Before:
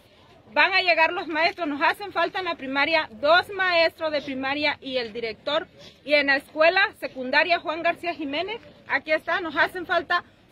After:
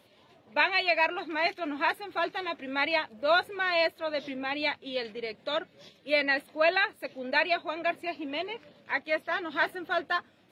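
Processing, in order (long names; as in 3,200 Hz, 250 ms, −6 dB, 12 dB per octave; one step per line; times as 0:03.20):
high-pass filter 140 Hz 12 dB per octave
level −6 dB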